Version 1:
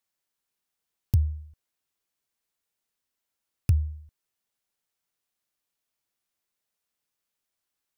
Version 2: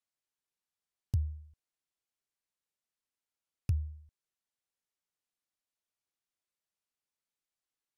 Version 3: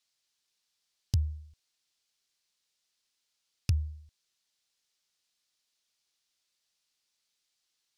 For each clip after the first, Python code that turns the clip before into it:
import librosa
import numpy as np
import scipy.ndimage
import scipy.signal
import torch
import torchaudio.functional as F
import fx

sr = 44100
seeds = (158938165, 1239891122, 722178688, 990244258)

y1 = scipy.signal.sosfilt(scipy.signal.butter(2, 11000.0, 'lowpass', fs=sr, output='sos'), x)
y1 = F.gain(torch.from_numpy(y1), -8.5).numpy()
y2 = fx.peak_eq(y1, sr, hz=4600.0, db=15.0, octaves=2.0)
y2 = F.gain(torch.from_numpy(y2), 3.0).numpy()